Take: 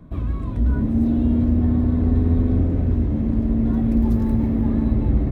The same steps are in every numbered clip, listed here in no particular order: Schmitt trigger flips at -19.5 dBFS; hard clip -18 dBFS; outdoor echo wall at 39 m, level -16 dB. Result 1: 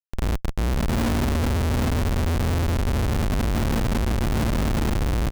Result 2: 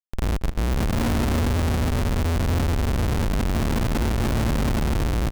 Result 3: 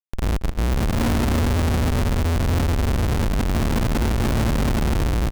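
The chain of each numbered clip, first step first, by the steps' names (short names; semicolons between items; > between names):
outdoor echo > hard clip > Schmitt trigger; hard clip > Schmitt trigger > outdoor echo; Schmitt trigger > outdoor echo > hard clip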